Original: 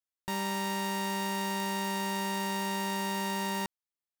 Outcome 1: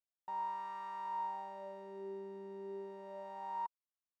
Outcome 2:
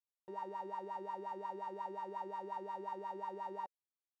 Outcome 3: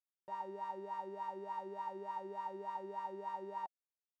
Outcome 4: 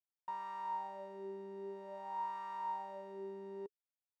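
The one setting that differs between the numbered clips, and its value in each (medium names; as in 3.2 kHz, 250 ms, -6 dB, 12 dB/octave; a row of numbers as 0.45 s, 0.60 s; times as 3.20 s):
wah-wah, rate: 0.31 Hz, 5.6 Hz, 3.4 Hz, 0.51 Hz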